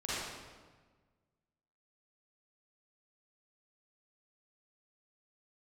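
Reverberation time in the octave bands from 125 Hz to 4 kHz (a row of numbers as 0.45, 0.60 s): 1.9, 1.7, 1.5, 1.4, 1.2, 1.1 s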